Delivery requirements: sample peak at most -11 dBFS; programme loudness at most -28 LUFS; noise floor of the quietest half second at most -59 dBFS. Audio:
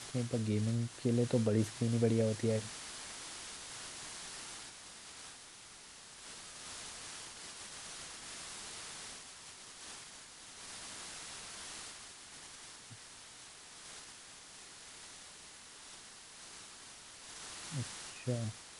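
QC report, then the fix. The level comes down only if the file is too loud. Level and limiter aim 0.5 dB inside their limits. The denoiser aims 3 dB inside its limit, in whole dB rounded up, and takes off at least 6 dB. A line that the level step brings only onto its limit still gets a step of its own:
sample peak -18.0 dBFS: pass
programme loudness -40.5 LUFS: pass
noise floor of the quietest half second -54 dBFS: fail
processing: noise reduction 8 dB, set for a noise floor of -54 dBFS

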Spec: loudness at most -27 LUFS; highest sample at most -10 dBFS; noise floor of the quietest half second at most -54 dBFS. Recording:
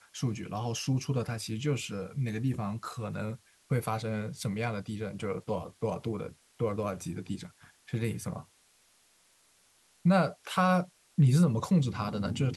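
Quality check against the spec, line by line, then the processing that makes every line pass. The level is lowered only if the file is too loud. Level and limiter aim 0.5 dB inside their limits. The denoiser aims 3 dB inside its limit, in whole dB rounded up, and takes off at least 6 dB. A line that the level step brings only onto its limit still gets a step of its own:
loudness -31.5 LUFS: pass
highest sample -14.0 dBFS: pass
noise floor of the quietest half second -66 dBFS: pass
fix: none needed

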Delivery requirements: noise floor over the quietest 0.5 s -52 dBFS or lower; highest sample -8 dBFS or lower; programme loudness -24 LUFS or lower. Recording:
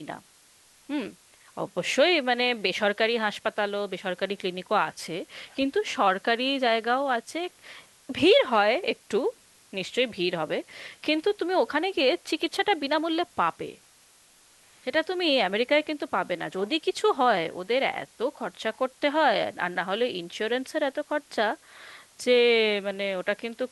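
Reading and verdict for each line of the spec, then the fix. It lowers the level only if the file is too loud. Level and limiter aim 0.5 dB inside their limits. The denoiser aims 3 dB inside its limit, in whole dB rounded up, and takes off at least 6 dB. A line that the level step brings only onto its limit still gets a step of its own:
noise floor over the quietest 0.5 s -58 dBFS: pass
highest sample -9.5 dBFS: pass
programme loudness -26.0 LUFS: pass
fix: none needed

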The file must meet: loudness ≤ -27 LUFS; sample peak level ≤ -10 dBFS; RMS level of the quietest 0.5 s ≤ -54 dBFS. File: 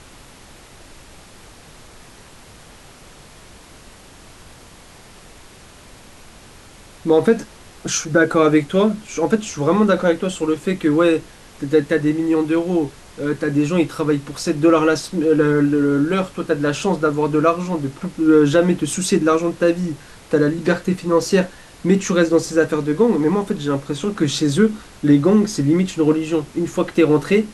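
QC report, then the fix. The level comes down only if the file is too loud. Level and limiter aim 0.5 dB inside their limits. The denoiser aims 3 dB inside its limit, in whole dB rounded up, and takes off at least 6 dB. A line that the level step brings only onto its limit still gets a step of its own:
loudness -18.0 LUFS: fail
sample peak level -3.5 dBFS: fail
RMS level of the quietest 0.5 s -43 dBFS: fail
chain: noise reduction 6 dB, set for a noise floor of -43 dBFS; trim -9.5 dB

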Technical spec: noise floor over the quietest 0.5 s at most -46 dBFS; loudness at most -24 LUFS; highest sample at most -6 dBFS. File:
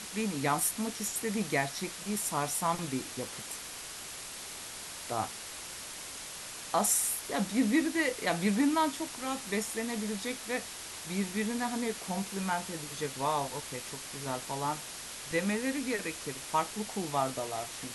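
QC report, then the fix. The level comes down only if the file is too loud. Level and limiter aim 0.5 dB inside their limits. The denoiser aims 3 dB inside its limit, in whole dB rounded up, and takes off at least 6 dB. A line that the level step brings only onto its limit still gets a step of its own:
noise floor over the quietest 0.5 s -43 dBFS: fail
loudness -33.0 LUFS: pass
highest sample -15.0 dBFS: pass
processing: noise reduction 6 dB, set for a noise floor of -43 dBFS

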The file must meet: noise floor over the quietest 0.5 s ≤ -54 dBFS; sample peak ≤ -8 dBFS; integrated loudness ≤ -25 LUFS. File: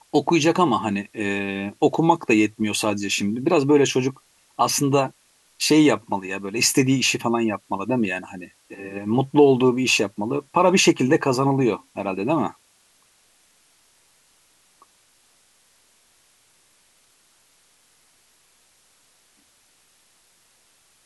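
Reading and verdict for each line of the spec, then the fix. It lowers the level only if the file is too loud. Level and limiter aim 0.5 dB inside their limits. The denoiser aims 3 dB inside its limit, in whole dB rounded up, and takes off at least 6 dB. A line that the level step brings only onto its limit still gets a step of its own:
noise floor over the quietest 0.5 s -60 dBFS: pass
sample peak -4.0 dBFS: fail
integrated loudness -20.5 LUFS: fail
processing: trim -5 dB

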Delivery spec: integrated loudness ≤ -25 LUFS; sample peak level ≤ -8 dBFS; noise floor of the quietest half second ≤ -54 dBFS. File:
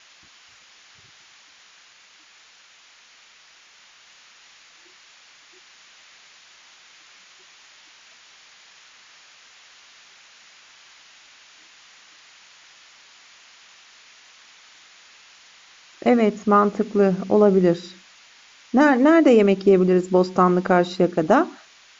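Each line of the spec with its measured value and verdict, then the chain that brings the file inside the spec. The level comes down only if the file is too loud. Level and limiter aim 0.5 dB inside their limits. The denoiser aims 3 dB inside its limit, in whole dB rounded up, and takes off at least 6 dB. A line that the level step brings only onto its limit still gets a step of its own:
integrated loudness -18.0 LUFS: fail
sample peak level -5.5 dBFS: fail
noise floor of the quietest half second -52 dBFS: fail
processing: trim -7.5 dB

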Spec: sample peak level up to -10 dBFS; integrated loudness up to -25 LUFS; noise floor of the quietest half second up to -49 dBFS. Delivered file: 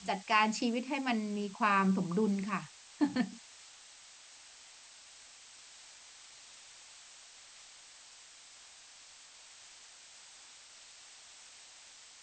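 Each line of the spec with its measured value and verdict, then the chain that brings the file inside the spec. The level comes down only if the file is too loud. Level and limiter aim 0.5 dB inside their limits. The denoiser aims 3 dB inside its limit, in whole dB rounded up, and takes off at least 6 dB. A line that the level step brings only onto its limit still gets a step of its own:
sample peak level -15.5 dBFS: pass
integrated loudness -32.0 LUFS: pass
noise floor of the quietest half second -56 dBFS: pass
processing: none needed

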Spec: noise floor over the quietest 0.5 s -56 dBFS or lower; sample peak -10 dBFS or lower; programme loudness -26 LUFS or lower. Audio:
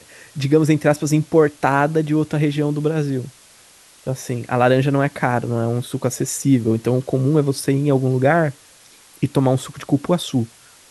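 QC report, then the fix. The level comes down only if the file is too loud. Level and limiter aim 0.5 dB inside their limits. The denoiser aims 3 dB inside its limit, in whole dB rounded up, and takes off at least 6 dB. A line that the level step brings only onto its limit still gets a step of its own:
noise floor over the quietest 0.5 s -49 dBFS: fail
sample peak -2.0 dBFS: fail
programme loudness -19.0 LUFS: fail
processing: trim -7.5 dB; peak limiter -10.5 dBFS

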